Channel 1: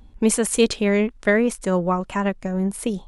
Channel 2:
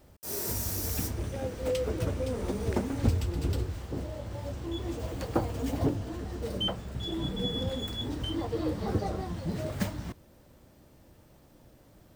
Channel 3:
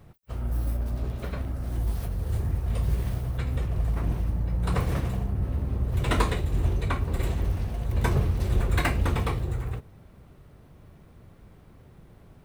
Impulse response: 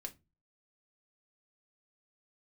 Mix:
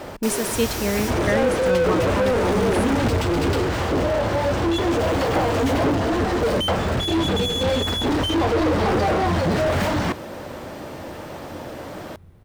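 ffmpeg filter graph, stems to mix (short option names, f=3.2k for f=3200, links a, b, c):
-filter_complex "[0:a]volume=-5dB[a];[1:a]asplit=2[b][c];[c]highpass=f=720:p=1,volume=38dB,asoftclip=type=tanh:threshold=-12.5dB[d];[b][d]amix=inputs=2:normalize=0,lowpass=f=1.6k:p=1,volume=-6dB,volume=0.5dB[e];[2:a]acompressor=threshold=-33dB:ratio=6,equalizer=f=87:w=7.1:g=15,adelay=250,volume=-1dB[f];[a][e][f]amix=inputs=3:normalize=0"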